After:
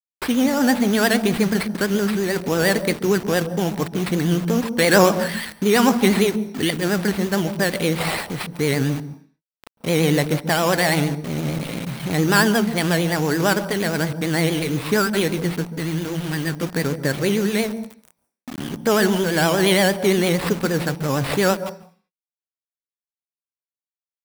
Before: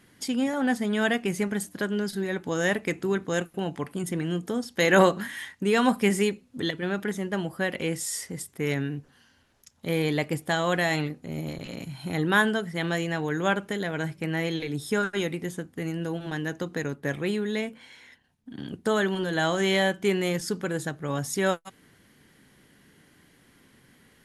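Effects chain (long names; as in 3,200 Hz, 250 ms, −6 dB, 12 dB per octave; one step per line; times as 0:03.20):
0:15.64–0:16.63: parametric band 660 Hz −8 dB 1.4 octaves
in parallel at −1 dB: brickwall limiter −17.5 dBFS, peak gain reduction 11 dB
on the sum: decimation without filtering 7×
pitch vibrato 8.7 Hz 87 cents
bit reduction 6 bits
on a send at −15 dB: convolution reverb RT60 0.40 s, pre-delay 135 ms
on the sum: level +2 dB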